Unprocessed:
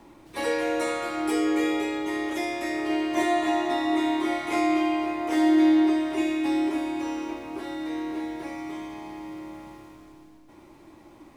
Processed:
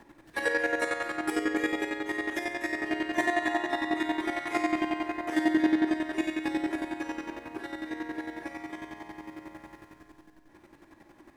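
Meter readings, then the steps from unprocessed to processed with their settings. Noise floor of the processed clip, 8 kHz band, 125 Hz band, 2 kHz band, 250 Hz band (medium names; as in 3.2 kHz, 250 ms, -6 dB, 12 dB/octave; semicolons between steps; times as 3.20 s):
-59 dBFS, -5.0 dB, no reading, +2.0 dB, -6.0 dB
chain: peaking EQ 1.7 kHz +14 dB 0.25 oct; square tremolo 11 Hz, depth 60%, duty 30%; on a send: flutter echo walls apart 9.5 m, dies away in 0.25 s; on the sum: trim -1.5 dB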